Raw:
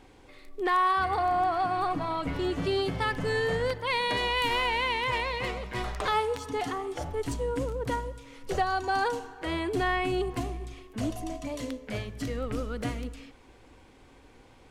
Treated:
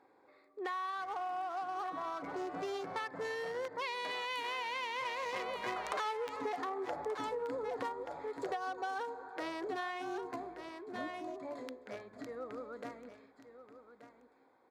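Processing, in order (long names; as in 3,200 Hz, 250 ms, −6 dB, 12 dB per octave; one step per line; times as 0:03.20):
adaptive Wiener filter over 15 samples
source passing by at 0:06.35, 5 m/s, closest 3.7 metres
soft clipping −26 dBFS, distortion −16 dB
Bessel high-pass filter 530 Hz, order 2
high-shelf EQ 11,000 Hz −4 dB
on a send: single-tap delay 1,180 ms −12.5 dB
on the sum: downward compressor 6 to 1, threshold −50 dBFS, peak gain reduction 19.5 dB
level +14 dB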